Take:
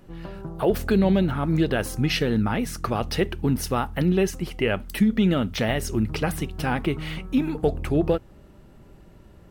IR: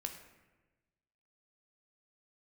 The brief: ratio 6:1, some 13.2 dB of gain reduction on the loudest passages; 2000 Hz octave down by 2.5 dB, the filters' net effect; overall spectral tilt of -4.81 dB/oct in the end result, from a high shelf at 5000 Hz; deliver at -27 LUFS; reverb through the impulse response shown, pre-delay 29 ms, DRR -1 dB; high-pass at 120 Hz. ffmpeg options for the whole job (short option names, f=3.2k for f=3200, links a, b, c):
-filter_complex "[0:a]highpass=120,equalizer=f=2k:t=o:g=-4.5,highshelf=f=5k:g=7,acompressor=threshold=-31dB:ratio=6,asplit=2[a][b];[1:a]atrim=start_sample=2205,adelay=29[c];[b][c]afir=irnorm=-1:irlink=0,volume=2.5dB[d];[a][d]amix=inputs=2:normalize=0,volume=5dB"